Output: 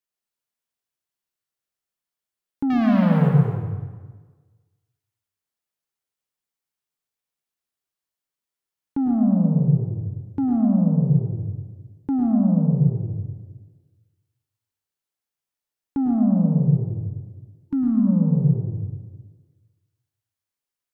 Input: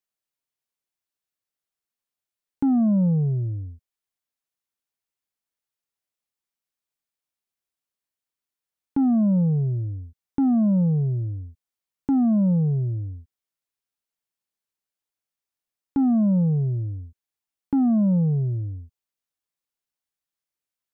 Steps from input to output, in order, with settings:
0:02.70–0:03.29: leveller curve on the samples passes 3
0:17.03–0:18.07: gain on a spectral selection 340–900 Hz −15 dB
dense smooth reverb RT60 1.4 s, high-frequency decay 0.8×, pre-delay 90 ms, DRR 0 dB
level −2 dB

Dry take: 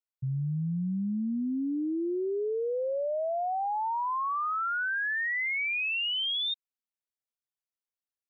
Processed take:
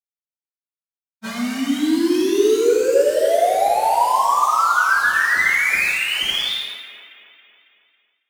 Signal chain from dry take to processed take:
fade in at the beginning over 2.14 s
high-frequency loss of the air 350 metres
bit reduction 7 bits
high-pass filter 270 Hz 24 dB per octave
echo with a time of its own for lows and highs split 2,300 Hz, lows 275 ms, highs 81 ms, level −4 dB
dense smooth reverb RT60 0.79 s, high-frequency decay 0.75×, DRR −4 dB
automatic gain control gain up to 8.5 dB
frozen spectrum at 0:00.34, 0.91 s
linearly interpolated sample-rate reduction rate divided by 2×

